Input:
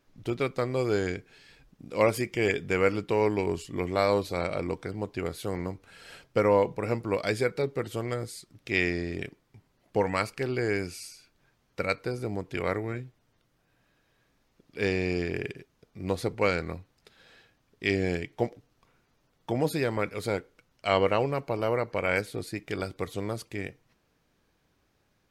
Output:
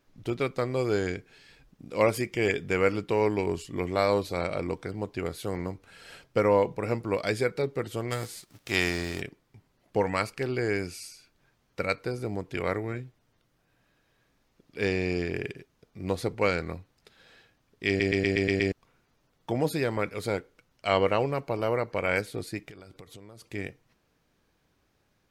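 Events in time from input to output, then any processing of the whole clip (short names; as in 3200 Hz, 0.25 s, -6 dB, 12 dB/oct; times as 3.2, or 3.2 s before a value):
8.1–9.2 spectral whitening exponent 0.6
17.88 stutter in place 0.12 s, 7 plays
22.69–23.45 compressor 16:1, threshold -43 dBFS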